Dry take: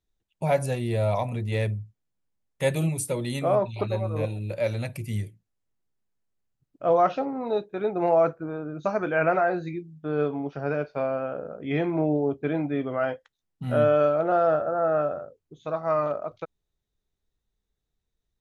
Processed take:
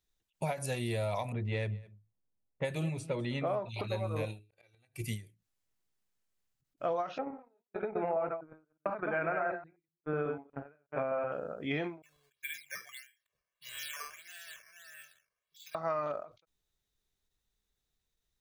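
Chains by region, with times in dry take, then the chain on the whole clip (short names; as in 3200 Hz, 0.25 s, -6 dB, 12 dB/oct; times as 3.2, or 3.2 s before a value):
1.32–3.69 low-pass opened by the level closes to 690 Hz, open at -19 dBFS + high shelf 2700 Hz -7.5 dB + echo 0.204 s -22 dB
4.39–5.03 comb 2.6 ms, depth 75% + flipped gate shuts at -23 dBFS, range -37 dB
7.18–11.32 reverse delay 0.123 s, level -3.5 dB + gate -30 dBFS, range -46 dB + LPF 2300 Hz 24 dB/oct
12.02–15.75 elliptic high-pass 1900 Hz + decimation with a swept rate 8× 1.6 Hz + comb 1.8 ms, depth 83%
whole clip: tilt shelf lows -4.5 dB, about 1100 Hz; compressor, threshold -30 dBFS; ending taper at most 170 dB/s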